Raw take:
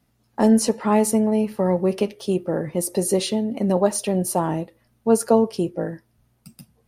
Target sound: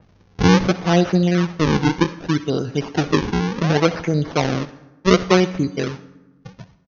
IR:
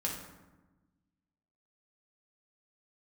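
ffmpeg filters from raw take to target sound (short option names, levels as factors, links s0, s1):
-filter_complex "[0:a]agate=range=0.1:threshold=0.002:ratio=16:detection=peak,acompressor=mode=upward:threshold=0.0251:ratio=2.5,aresample=16000,acrusher=samples=12:mix=1:aa=0.000001:lfo=1:lforange=19.2:lforate=0.67,aresample=44100,asetrate=36028,aresample=44100,atempo=1.22405,asplit=2[s0][s1];[1:a]atrim=start_sample=2205,lowshelf=f=350:g=-10,adelay=64[s2];[s1][s2]afir=irnorm=-1:irlink=0,volume=0.15[s3];[s0][s3]amix=inputs=2:normalize=0,adynamicequalizer=threshold=0.01:dfrequency=3600:dqfactor=0.7:tfrequency=3600:tqfactor=0.7:attack=5:release=100:ratio=0.375:range=2.5:mode=cutabove:tftype=highshelf,volume=1.33"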